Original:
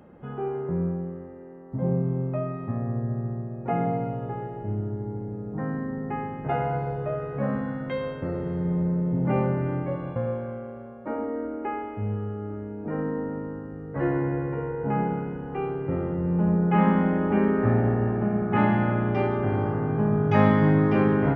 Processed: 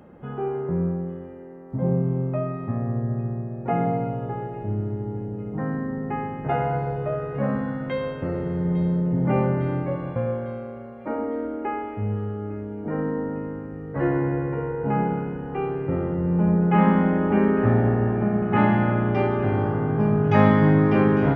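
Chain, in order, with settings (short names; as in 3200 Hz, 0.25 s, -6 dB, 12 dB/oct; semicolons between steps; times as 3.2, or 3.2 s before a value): thin delay 0.853 s, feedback 58%, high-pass 3000 Hz, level -10.5 dB; gain +2.5 dB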